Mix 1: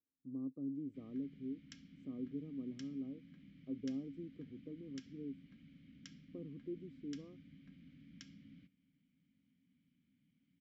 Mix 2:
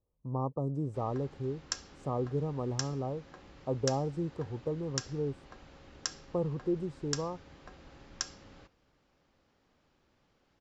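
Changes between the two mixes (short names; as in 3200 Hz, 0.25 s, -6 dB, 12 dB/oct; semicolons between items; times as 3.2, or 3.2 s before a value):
background: add resonant low shelf 250 Hz -12 dB, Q 3; master: remove vowel filter i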